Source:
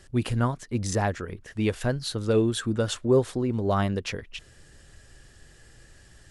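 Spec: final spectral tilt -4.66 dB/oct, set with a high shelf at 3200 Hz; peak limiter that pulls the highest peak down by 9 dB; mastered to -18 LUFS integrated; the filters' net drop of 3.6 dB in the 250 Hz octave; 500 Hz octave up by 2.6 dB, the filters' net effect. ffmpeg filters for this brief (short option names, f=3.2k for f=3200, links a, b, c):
-af "equalizer=f=250:t=o:g=-7,equalizer=f=500:t=o:g=5.5,highshelf=f=3.2k:g=5.5,volume=11dB,alimiter=limit=-7dB:level=0:latency=1"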